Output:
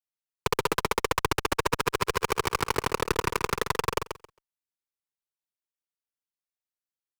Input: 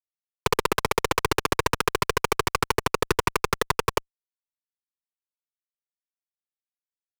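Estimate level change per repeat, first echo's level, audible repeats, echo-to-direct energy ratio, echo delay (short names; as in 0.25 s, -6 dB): -16.0 dB, -8.0 dB, 2, -8.0 dB, 0.135 s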